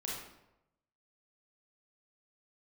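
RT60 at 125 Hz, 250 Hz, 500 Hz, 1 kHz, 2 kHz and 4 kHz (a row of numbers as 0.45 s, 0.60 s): 1.1 s, 0.85 s, 0.95 s, 0.85 s, 0.70 s, 0.60 s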